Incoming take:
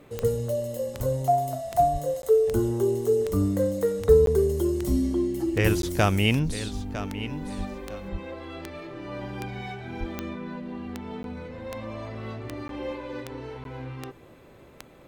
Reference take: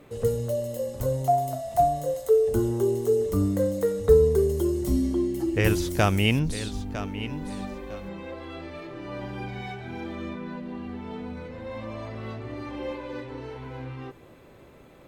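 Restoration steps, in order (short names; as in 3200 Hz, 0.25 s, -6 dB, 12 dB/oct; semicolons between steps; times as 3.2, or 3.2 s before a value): de-click; de-plosive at 1.92/7.57/8.11/9.99; interpolate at 2.22/4.26/5.82/11.23/12.68/13.64, 12 ms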